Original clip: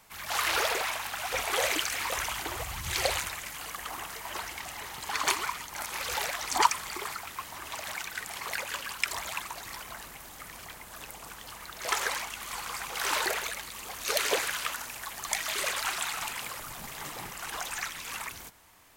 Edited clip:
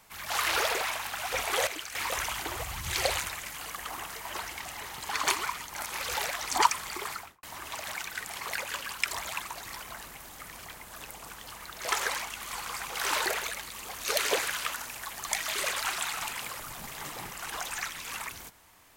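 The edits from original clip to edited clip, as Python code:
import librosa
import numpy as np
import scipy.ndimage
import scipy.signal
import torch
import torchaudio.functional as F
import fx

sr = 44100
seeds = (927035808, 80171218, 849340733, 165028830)

y = fx.studio_fade_out(x, sr, start_s=7.15, length_s=0.28)
y = fx.edit(y, sr, fx.clip_gain(start_s=1.67, length_s=0.28, db=-9.0), tone=tone)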